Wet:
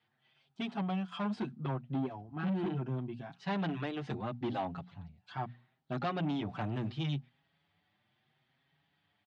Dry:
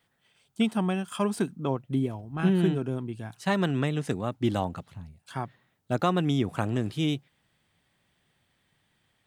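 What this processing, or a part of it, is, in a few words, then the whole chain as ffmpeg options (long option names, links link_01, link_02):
barber-pole flanger into a guitar amplifier: -filter_complex "[0:a]bandreject=frequency=60:width_type=h:width=6,bandreject=frequency=120:width_type=h:width=6,bandreject=frequency=180:width_type=h:width=6,bandreject=frequency=240:width_type=h:width=6,asettb=1/sr,asplit=3[link_01][link_02][link_03];[link_01]atrim=end=2.134[link_04];[link_02]atrim=start=2.13:end=2.95,asetpts=PTS-STARTPTS,afade=type=in:duration=0.004:curve=qsin,afade=type=out:start_time=0.816:duration=0.004:curve=qsin,equalizer=frequency=3400:width=1.5:gain=-4[link_05];[link_03]atrim=start=2.946[link_06];[link_04][link_05]acrossfade=duration=0.004:curve1=hsin:curve2=qsin[link_07];[link_07][link_06]acrossfade=duration=0.004:curve1=qsin:curve2=hsin,asplit=2[link_08][link_09];[link_09]adelay=6.2,afreqshift=0.74[link_10];[link_08][link_10]amix=inputs=2:normalize=1,asoftclip=type=tanh:threshold=-28dB,highpass=100,equalizer=frequency=140:width_type=q:width=4:gain=4,equalizer=frequency=490:width_type=q:width=4:gain=-6,equalizer=frequency=760:width_type=q:width=4:gain=5,lowpass=frequency=4500:width=0.5412,lowpass=frequency=4500:width=1.3066,volume=-1.5dB"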